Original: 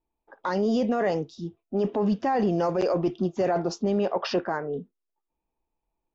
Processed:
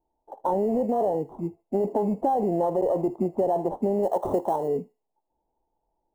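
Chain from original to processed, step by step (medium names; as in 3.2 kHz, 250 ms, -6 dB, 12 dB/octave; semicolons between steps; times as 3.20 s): sample-rate reducer 2.4 kHz, jitter 0%; FFT filter 180 Hz 0 dB, 890 Hz +10 dB, 1.5 kHz -23 dB, 4.8 kHz -28 dB, 7.3 kHz -19 dB; thinning echo 77 ms, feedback 37%, high-pass 1.2 kHz, level -20 dB; compression, threshold -23 dBFS, peak gain reduction 9 dB; 4.03–4.68 s: treble shelf 3.4 kHz +8.5 dB; trim +2 dB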